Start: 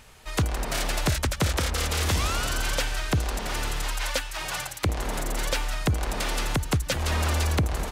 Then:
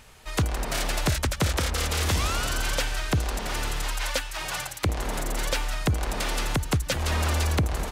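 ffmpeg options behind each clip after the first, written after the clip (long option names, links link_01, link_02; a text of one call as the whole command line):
ffmpeg -i in.wav -af anull out.wav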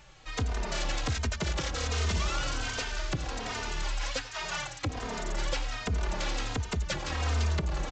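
ffmpeg -i in.wav -filter_complex "[0:a]aresample=16000,asoftclip=type=hard:threshold=-24.5dB,aresample=44100,aecho=1:1:92:0.141,asplit=2[link_01][link_02];[link_02]adelay=3,afreqshift=-1.3[link_03];[link_01][link_03]amix=inputs=2:normalize=1" out.wav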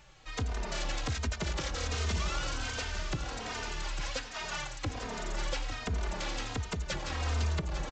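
ffmpeg -i in.wav -af "aecho=1:1:851:0.282,volume=-3dB" out.wav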